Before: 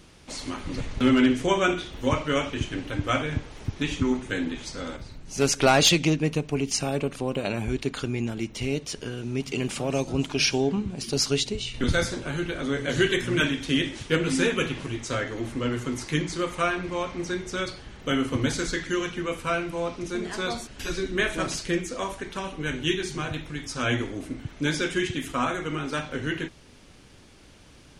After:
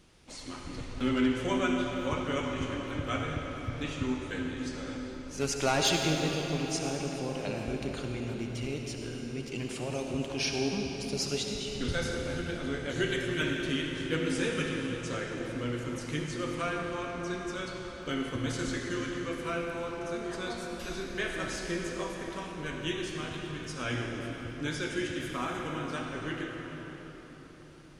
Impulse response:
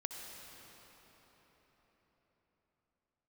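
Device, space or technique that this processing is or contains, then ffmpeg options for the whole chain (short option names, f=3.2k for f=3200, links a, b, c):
cathedral: -filter_complex "[1:a]atrim=start_sample=2205[a];[0:a][a]afir=irnorm=-1:irlink=0,volume=-6dB"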